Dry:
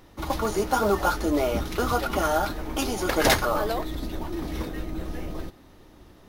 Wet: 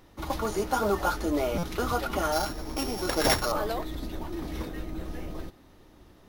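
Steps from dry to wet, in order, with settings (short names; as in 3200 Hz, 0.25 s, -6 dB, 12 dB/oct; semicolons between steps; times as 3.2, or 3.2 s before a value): 2.32–3.52 sample sorter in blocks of 8 samples; stuck buffer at 1.58, samples 256, times 8; gain -3.5 dB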